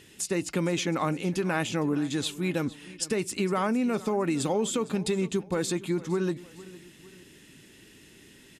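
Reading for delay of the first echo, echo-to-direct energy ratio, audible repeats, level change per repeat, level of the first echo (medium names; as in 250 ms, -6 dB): 458 ms, -18.0 dB, 2, -6.5 dB, -19.0 dB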